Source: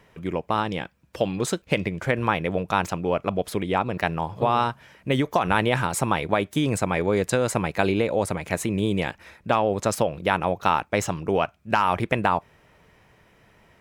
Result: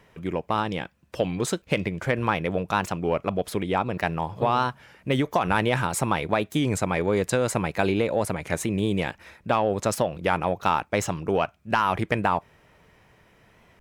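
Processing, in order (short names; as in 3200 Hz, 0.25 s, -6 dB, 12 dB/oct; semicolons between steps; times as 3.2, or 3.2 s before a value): in parallel at -4.5 dB: soft clip -14 dBFS, distortion -14 dB; on the sum: record warp 33 1/3 rpm, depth 100 cents; gain -4.5 dB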